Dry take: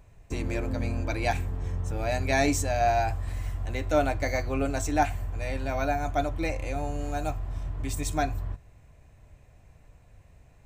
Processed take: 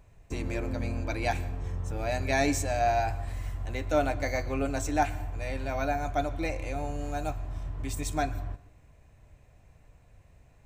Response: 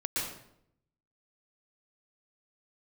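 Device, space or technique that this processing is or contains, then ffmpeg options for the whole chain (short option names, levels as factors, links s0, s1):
filtered reverb send: -filter_complex "[0:a]asplit=2[s0][s1];[s1]highpass=150,lowpass=8000[s2];[1:a]atrim=start_sample=2205[s3];[s2][s3]afir=irnorm=-1:irlink=0,volume=0.0891[s4];[s0][s4]amix=inputs=2:normalize=0,volume=0.75"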